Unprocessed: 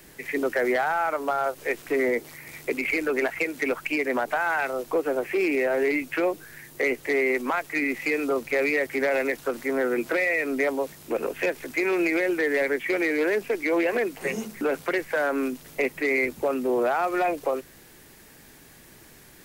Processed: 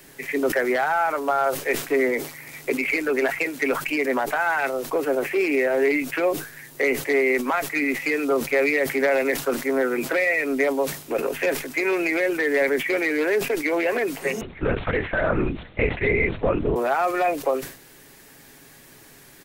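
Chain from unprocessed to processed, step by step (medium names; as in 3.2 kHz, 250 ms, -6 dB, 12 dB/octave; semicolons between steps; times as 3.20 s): bass shelf 140 Hz -5.5 dB; comb 7.3 ms, depth 33%; 14.41–16.76 s: LPC vocoder at 8 kHz whisper; decay stretcher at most 110 dB/s; trim +2 dB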